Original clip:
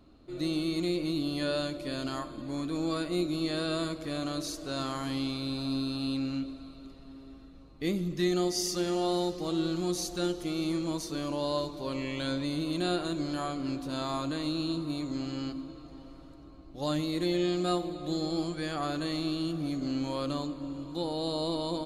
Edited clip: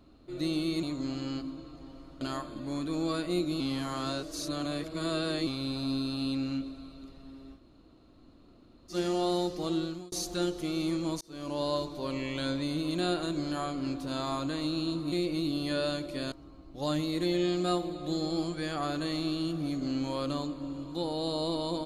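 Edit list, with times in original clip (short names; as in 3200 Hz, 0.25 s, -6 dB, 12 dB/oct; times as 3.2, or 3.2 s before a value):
0.83–2.03 swap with 14.94–16.32
3.42–5.29 reverse
7.4–8.75 room tone, crossfade 0.10 s
9.55–9.94 fade out
11.03–11.42 fade in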